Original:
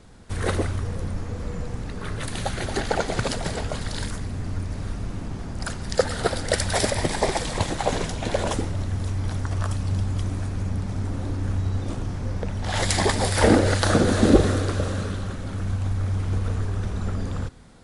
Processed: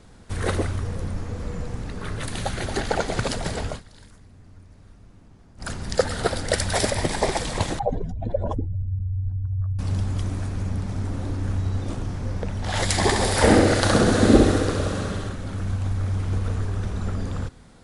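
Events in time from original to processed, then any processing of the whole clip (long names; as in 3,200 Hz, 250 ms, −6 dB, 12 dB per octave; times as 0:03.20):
0:03.69–0:05.70: duck −19 dB, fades 0.13 s
0:07.79–0:09.79: expanding power law on the bin magnitudes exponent 2.4
0:12.96–0:15.29: repeating echo 66 ms, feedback 57%, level −4 dB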